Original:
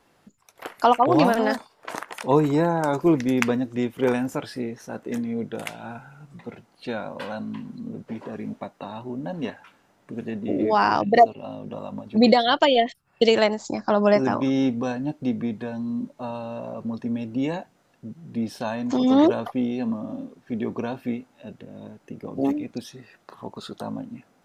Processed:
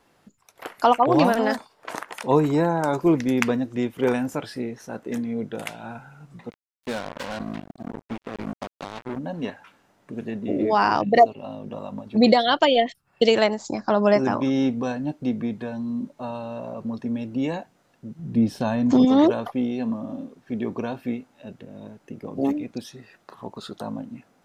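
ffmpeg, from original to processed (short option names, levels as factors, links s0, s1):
-filter_complex "[0:a]asplit=3[s0][s1][s2];[s0]afade=t=out:st=6.49:d=0.02[s3];[s1]acrusher=bits=4:mix=0:aa=0.5,afade=t=in:st=6.49:d=0.02,afade=t=out:st=9.17:d=0.02[s4];[s2]afade=t=in:st=9.17:d=0.02[s5];[s3][s4][s5]amix=inputs=3:normalize=0,asettb=1/sr,asplit=3[s6][s7][s8];[s6]atrim=end=18.194[s9];[s7]atrim=start=18.19:end=19.05,asetpts=PTS-STARTPTS,afade=t=in:d=0.004:c=qsin,afade=t=out:st=0.856:d=0.004:c=qsin,lowshelf=f=350:g=10.5[s10];[s8]atrim=start=19.046[s11];[s9][s10]acrossfade=d=0.004:c1=hsin:c2=qsin[s12];[s12][s11]acrossfade=d=0.004:c1=qsin:c2=hsin"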